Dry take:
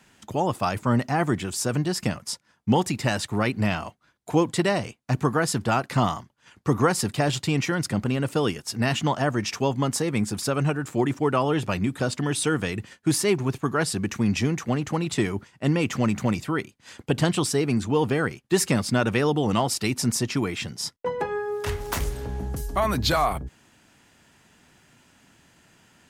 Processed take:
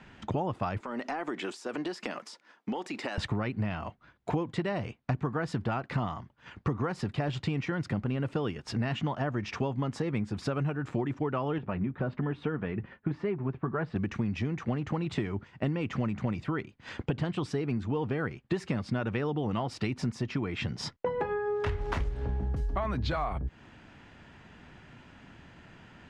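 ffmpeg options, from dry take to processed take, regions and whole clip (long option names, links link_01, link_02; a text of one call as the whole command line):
ffmpeg -i in.wav -filter_complex "[0:a]asettb=1/sr,asplit=3[link_01][link_02][link_03];[link_01]atrim=end=0.804[link_04];[link_02]atrim=start=0.8:end=3.18,asetpts=PTS-STARTPTS,afade=type=in:duration=0.004:curve=qsin,afade=type=out:start_time=2.376:duration=0.004:curve=qsin,highpass=frequency=280:width=0.5412,highpass=frequency=280:width=1.3066,highshelf=frequency=4600:gain=7.5,acompressor=threshold=-34dB:ratio=12:attack=3.2:release=140:knee=1:detection=peak[link_05];[link_03]atrim=start=3.176[link_06];[link_04][link_05]acrossfade=duration=0.004:curve1=hsin:curve2=qsin[link_07];[link_07][link_06]acrossfade=duration=0.004:curve1=qsin:curve2=hsin,asettb=1/sr,asplit=3[link_08][link_09][link_10];[link_08]atrim=end=11.584[link_11];[link_09]atrim=start=11.58:end=13.96,asetpts=PTS-STARTPTS,afade=type=in:duration=0.004:curve=qsin,afade=type=out:start_time=2.376:duration=0.004:curve=qsin,lowpass=1900,flanger=delay=4.2:depth=1.2:regen=-55:speed=1.2:shape=triangular[link_12];[link_10]atrim=start=13.956[link_13];[link_11][link_12]acrossfade=duration=0.004:curve1=hsin:curve2=qsin[link_14];[link_14][link_13]acrossfade=duration=0.004:curve1=qsin:curve2=hsin,lowpass=2800,lowshelf=frequency=93:gain=8.5,acompressor=threshold=-33dB:ratio=8,volume=5dB" out.wav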